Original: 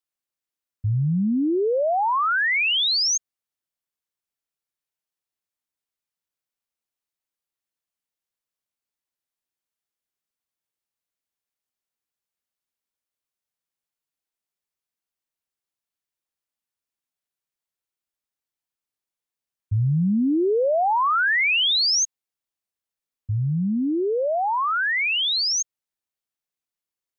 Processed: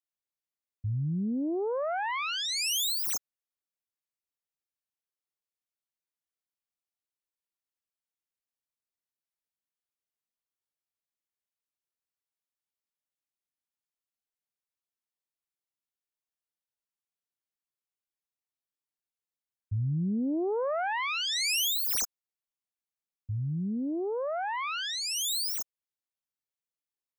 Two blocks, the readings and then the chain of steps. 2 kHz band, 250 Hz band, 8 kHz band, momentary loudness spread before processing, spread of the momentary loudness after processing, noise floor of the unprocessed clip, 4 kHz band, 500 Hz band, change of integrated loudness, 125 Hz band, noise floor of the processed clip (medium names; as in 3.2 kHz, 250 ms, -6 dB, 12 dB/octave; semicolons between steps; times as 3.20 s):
-13.0 dB, -8.5 dB, no reading, 8 LU, 8 LU, under -85 dBFS, -9.0 dB, -9.5 dB, -9.0 dB, -8.5 dB, under -85 dBFS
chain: self-modulated delay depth 0.18 ms; trim -8.5 dB